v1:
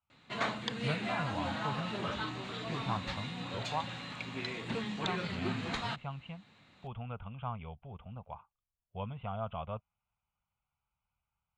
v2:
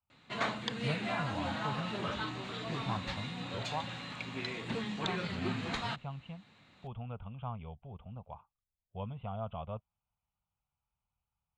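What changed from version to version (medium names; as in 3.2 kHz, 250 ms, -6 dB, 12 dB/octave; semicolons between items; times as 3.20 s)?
speech: add peaking EQ 1.8 kHz -8 dB 1.4 oct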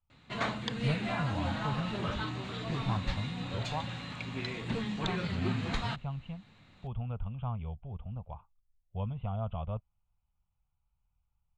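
master: remove high-pass 220 Hz 6 dB/octave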